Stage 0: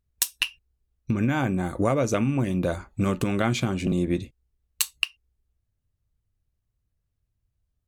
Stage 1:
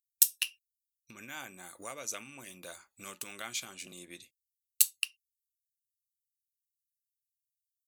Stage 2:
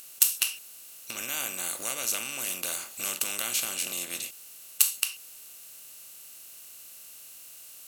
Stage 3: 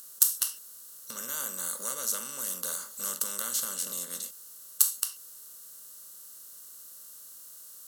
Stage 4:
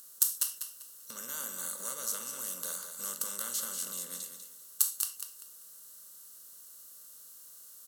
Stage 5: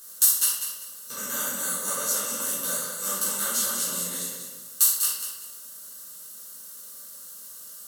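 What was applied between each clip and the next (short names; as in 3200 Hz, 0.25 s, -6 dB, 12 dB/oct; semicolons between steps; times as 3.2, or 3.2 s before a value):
differentiator
per-bin compression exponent 0.4
fixed phaser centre 490 Hz, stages 8
feedback echo 0.195 s, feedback 26%, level -8 dB; gain -4.5 dB
shoebox room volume 240 m³, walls mixed, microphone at 3.8 m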